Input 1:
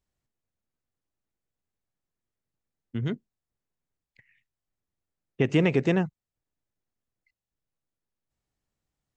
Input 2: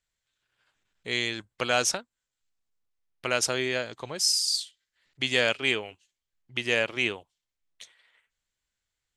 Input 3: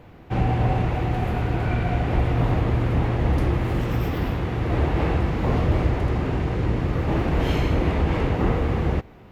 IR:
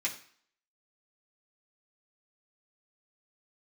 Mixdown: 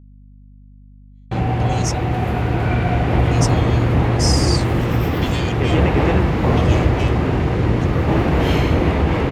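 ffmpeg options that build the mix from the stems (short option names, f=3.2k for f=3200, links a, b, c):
-filter_complex "[0:a]adelay=200,volume=-4.5dB[a];[1:a]aeval=exprs='if(lt(val(0),0),0.708*val(0),val(0))':c=same,bandpass=f=5.9k:t=q:w=1.2:csg=0,asplit=2[b][c];[c]adelay=2.8,afreqshift=0.34[d];[b][d]amix=inputs=2:normalize=1,volume=1.5dB[e];[2:a]highpass=61,adelay=1000,volume=1.5dB[f];[a][e][f]amix=inputs=3:normalize=0,agate=range=-57dB:threshold=-31dB:ratio=16:detection=peak,dynaudnorm=f=570:g=7:m=7dB,aeval=exprs='val(0)+0.00794*(sin(2*PI*50*n/s)+sin(2*PI*2*50*n/s)/2+sin(2*PI*3*50*n/s)/3+sin(2*PI*4*50*n/s)/4+sin(2*PI*5*50*n/s)/5)':c=same"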